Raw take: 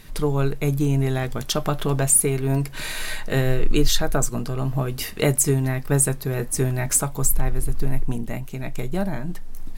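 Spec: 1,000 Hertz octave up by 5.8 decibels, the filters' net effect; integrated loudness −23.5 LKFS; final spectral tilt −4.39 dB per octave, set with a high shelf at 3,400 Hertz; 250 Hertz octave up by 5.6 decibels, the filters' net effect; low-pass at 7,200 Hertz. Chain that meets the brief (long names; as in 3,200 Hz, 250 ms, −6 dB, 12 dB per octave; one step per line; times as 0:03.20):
low-pass filter 7,200 Hz
parametric band 250 Hz +7 dB
parametric band 1,000 Hz +6.5 dB
high-shelf EQ 3,400 Hz +8.5 dB
level −3.5 dB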